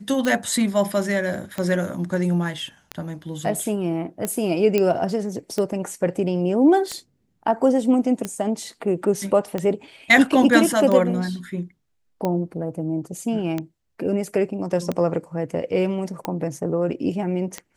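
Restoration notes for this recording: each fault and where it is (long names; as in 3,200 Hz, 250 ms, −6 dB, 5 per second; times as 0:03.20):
scratch tick 45 rpm −12 dBFS
0:04.78: click −8 dBFS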